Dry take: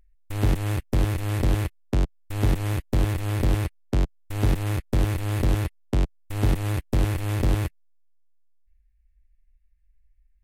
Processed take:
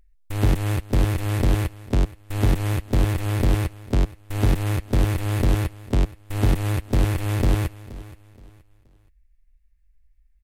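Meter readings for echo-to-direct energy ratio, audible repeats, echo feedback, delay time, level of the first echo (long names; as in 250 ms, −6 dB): −17.5 dB, 2, 31%, 474 ms, −18.0 dB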